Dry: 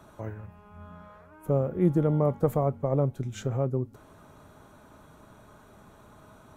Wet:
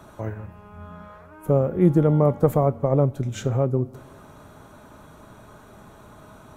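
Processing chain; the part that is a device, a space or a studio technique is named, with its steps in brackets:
compressed reverb return (on a send at −13 dB: convolution reverb RT60 1.1 s, pre-delay 15 ms + downward compressor, threshold −30 dBFS, peak gain reduction 12.5 dB)
on the sum: level +6 dB

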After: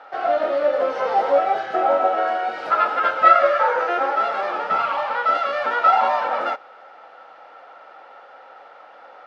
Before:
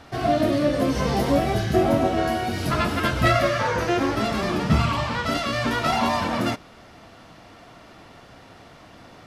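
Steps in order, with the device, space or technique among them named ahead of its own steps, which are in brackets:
0:04.03–0:04.71: high-pass filter 180 Hz 6 dB per octave
tin-can telephone (band-pass filter 700–3,000 Hz; hollow resonant body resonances 540/800/1,300 Hz, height 16 dB, ringing for 25 ms)
level −3 dB

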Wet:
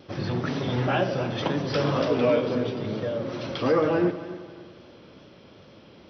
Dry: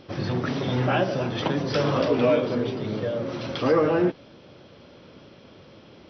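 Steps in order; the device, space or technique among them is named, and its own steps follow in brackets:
multi-head tape echo (echo machine with several playback heads 90 ms, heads first and third, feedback 53%, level −16 dB; tape wow and flutter 25 cents)
level −1.5 dB

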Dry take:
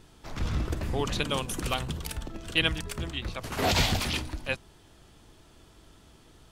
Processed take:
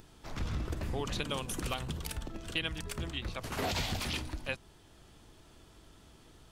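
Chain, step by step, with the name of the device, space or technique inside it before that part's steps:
upward and downward compression (upward compression, threshold −50 dBFS; downward compressor 4 to 1, threshold −28 dBFS, peak gain reduction 8 dB)
level −3 dB

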